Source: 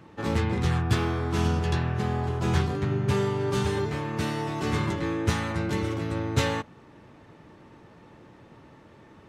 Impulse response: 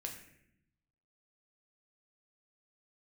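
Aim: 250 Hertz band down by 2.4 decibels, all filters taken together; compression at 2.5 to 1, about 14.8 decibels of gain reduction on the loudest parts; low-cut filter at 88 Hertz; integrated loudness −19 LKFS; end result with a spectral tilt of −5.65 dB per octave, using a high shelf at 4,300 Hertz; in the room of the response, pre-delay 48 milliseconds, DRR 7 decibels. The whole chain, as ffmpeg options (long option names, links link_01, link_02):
-filter_complex "[0:a]highpass=88,equalizer=frequency=250:width_type=o:gain=-3.5,highshelf=frequency=4300:gain=4.5,acompressor=threshold=-44dB:ratio=2.5,asplit=2[link_01][link_02];[1:a]atrim=start_sample=2205,adelay=48[link_03];[link_02][link_03]afir=irnorm=-1:irlink=0,volume=-5dB[link_04];[link_01][link_04]amix=inputs=2:normalize=0,volume=21dB"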